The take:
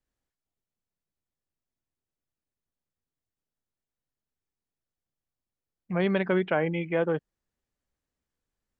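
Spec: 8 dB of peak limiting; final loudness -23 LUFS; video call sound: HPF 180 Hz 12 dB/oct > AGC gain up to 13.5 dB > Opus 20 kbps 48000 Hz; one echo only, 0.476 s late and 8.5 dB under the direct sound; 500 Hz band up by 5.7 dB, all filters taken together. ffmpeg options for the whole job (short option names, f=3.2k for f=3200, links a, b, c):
-af "equalizer=f=500:t=o:g=7,alimiter=limit=-17dB:level=0:latency=1,highpass=180,aecho=1:1:476:0.376,dynaudnorm=m=13.5dB,volume=5dB" -ar 48000 -c:a libopus -b:a 20k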